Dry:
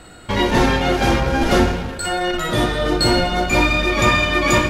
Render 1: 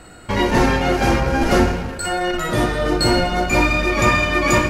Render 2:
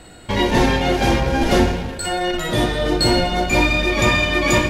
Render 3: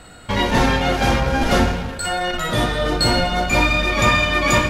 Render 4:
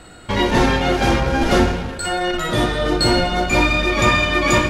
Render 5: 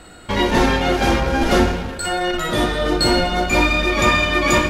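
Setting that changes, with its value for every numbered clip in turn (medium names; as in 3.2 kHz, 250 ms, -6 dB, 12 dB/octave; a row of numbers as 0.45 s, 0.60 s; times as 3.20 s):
peaking EQ, frequency: 3.5 kHz, 1.3 kHz, 350 Hz, 14 kHz, 120 Hz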